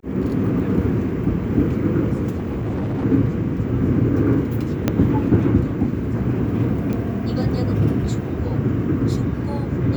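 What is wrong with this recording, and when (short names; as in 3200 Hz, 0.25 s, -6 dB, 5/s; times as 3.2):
2.34–3.05 clipped -20.5 dBFS
4.88 pop -5 dBFS
6.93 pop -15 dBFS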